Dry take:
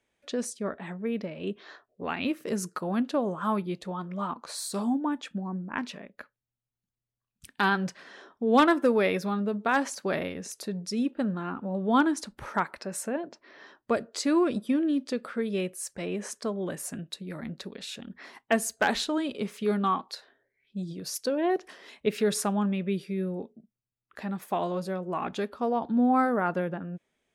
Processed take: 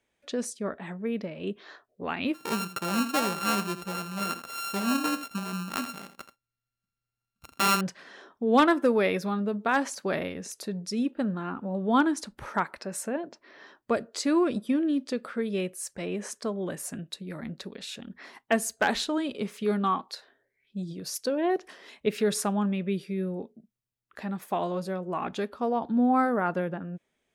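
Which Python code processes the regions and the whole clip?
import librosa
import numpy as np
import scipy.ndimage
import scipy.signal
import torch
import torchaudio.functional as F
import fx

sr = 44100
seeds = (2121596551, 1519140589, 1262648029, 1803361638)

y = fx.chain(x, sr, fx.sample_sort(block=32),
    fx.echo_single(ms=82, db=-11.5), at=(2.34, 7.81))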